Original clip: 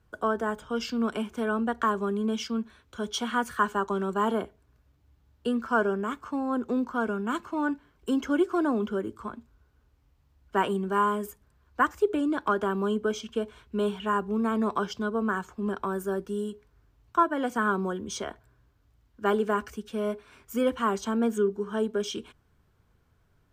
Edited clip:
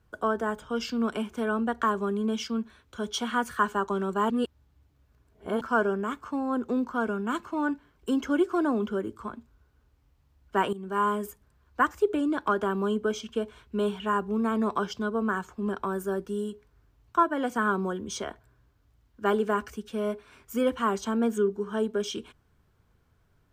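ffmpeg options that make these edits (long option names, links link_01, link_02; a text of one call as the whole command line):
ffmpeg -i in.wav -filter_complex "[0:a]asplit=4[link_01][link_02][link_03][link_04];[link_01]atrim=end=4.302[link_05];[link_02]atrim=start=4.298:end=5.612,asetpts=PTS-STARTPTS,areverse[link_06];[link_03]atrim=start=5.608:end=10.73,asetpts=PTS-STARTPTS,afade=type=out:start_time=5.118:duration=0.004:curve=hsin:silence=0.177828[link_07];[link_04]atrim=start=10.73,asetpts=PTS-STARTPTS,afade=type=in:duration=0.35:silence=0.177828[link_08];[link_05][link_06]acrossfade=duration=0.004:curve1=hsin:curve2=hsin[link_09];[link_07][link_08]concat=n=2:v=0:a=1[link_10];[link_09][link_10]acrossfade=duration=0.004:curve1=hsin:curve2=hsin" out.wav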